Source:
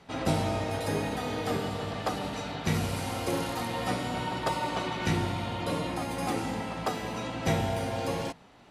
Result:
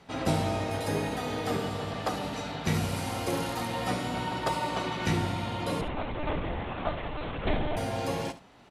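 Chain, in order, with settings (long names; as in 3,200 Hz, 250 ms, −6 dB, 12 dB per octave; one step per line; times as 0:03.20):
0:05.81–0:07.77: one-pitch LPC vocoder at 8 kHz 300 Hz
single-tap delay 70 ms −14.5 dB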